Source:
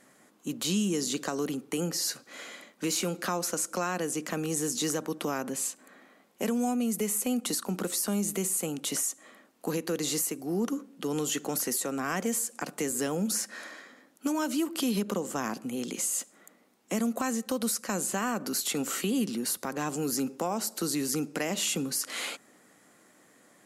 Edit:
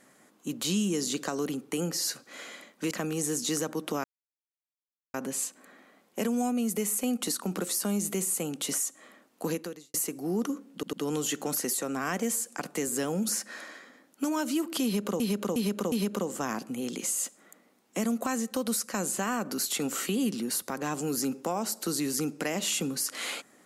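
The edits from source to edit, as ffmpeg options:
-filter_complex "[0:a]asplit=9[a][b][c][d][e][f][g][h][i];[a]atrim=end=2.912[j];[b]atrim=start=4.238:end=5.37,asetpts=PTS-STARTPTS,afade=t=out:st=1.128:d=0.004:c=hsin,apad=pad_dur=1.1[k];[c]atrim=start=5.37:end=10.17,asetpts=PTS-STARTPTS,afade=t=in:d=0.004:c=hsin,afade=t=out:st=4.41:d=0.39:c=qua[l];[d]atrim=start=10.17:end=11.062,asetpts=PTS-STARTPTS,afade=t=in:d=0.004:c=hsin[m];[e]atrim=start=10.958:end=11.062[n];[f]atrim=start=10.958:end=15.232[o];[g]atrim=start=14.868:end=15.232[p];[h]atrim=start=14.868:end=15.232[q];[i]atrim=start=14.868[r];[k][l][m]concat=n=3:v=0:a=1[s];[j][s]acrossfade=d=0.004:c1=hsin:c2=hsin[t];[t][n]acrossfade=d=0.004:c1=hsin:c2=hsin[u];[u][o]acrossfade=d=0.004:c1=hsin:c2=hsin[v];[v][p]acrossfade=d=0.004:c1=hsin:c2=hsin[w];[w][q]acrossfade=d=0.004:c1=hsin:c2=hsin[x];[x][r]acrossfade=d=0.004:c1=hsin:c2=hsin"

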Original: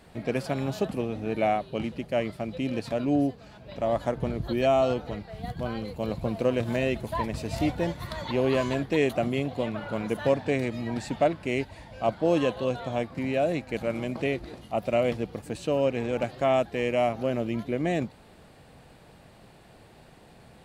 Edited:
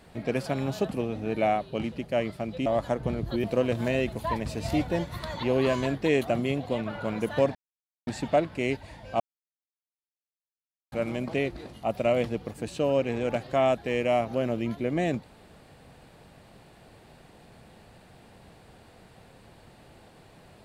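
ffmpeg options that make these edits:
-filter_complex "[0:a]asplit=7[a][b][c][d][e][f][g];[a]atrim=end=2.662[h];[b]atrim=start=3.828:end=4.612[i];[c]atrim=start=6.318:end=10.43,asetpts=PTS-STARTPTS,afade=t=out:st=4.108:d=0.004:c=hsin[j];[d]atrim=start=10.43:end=10.95,asetpts=PTS-STARTPTS,volume=0[k];[e]atrim=start=10.95:end=12.08,asetpts=PTS-STARTPTS,afade=t=in:d=0.004:c=hsin,afade=t=out:st=1.126:d=0.004:c=hsin[l];[f]atrim=start=12.08:end=13.8,asetpts=PTS-STARTPTS,volume=0[m];[g]atrim=start=13.8,asetpts=PTS-STARTPTS,afade=t=in:d=0.004:c=hsin[n];[h][i]acrossfade=d=0.004:c1=hsin:c2=hsin[o];[j][k][l][m][n]concat=n=5:v=0:a=1[p];[o][p]acrossfade=d=0.004:c1=hsin:c2=hsin"

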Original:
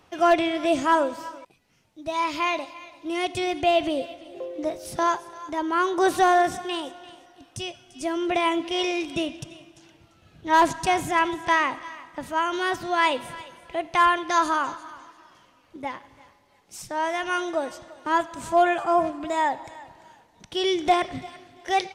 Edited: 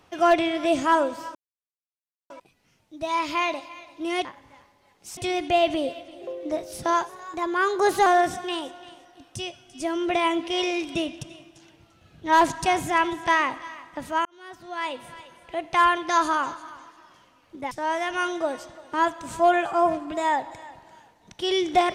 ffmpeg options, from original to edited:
-filter_complex "[0:a]asplit=8[a][b][c][d][e][f][g][h];[a]atrim=end=1.35,asetpts=PTS-STARTPTS,afade=t=out:st=1.346:d=0.004:c=hsin,apad=pad_dur=0.95[i];[b]atrim=start=1.35:end=3.302,asetpts=PTS-STARTPTS,afade=t=in:d=0.004:c=hsin[j];[c]atrim=start=15.918:end=16.842[k];[d]atrim=start=3.298:end=5.224[l];[e]atrim=start=5.22:end=6.27,asetpts=PTS-STARTPTS,asetrate=47628,aresample=44100[m];[f]atrim=start=6.266:end=12.46,asetpts=PTS-STARTPTS,afade=t=out:st=6.19:d=0.004:c=hsin[n];[g]atrim=start=12.46:end=15.922,asetpts=PTS-STARTPTS,afade=t=in:d=1.59[o];[h]atrim=start=16.838[p];[i][j]concat=n=2:v=0:a=1[q];[q][k]acrossfade=d=0.004:c1=hsin:c2=hsin[r];[r][l]acrossfade=d=0.004:c1=hsin:c2=hsin[s];[s][m]acrossfade=d=0.004:c1=hsin:c2=hsin[t];[n][o]concat=n=2:v=0:a=1[u];[t][u]acrossfade=d=0.004:c1=hsin:c2=hsin[v];[v][p]acrossfade=d=0.004:c1=hsin:c2=hsin"

